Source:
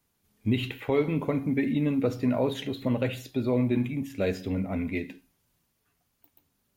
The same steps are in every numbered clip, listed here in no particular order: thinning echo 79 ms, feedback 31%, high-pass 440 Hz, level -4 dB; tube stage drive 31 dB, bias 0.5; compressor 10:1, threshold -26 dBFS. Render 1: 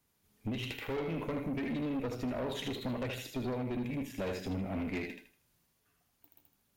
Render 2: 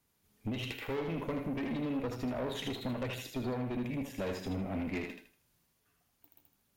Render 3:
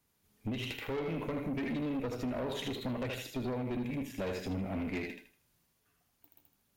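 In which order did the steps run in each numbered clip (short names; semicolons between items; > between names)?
compressor > thinning echo > tube stage; compressor > tube stage > thinning echo; thinning echo > compressor > tube stage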